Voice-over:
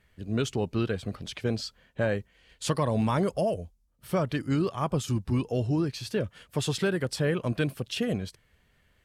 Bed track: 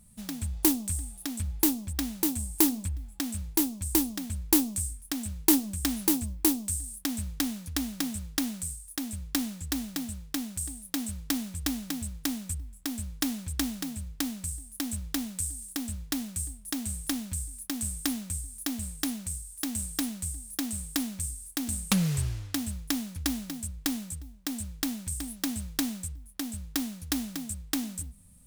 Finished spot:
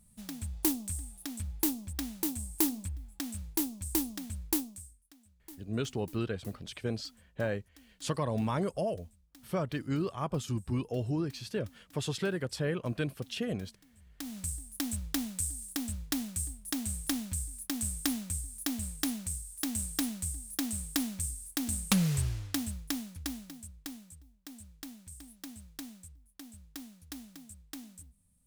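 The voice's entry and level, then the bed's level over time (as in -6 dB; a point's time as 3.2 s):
5.40 s, -5.5 dB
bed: 4.47 s -5.5 dB
5.19 s -29 dB
13.89 s -29 dB
14.39 s -1.5 dB
22.51 s -1.5 dB
24.05 s -14.5 dB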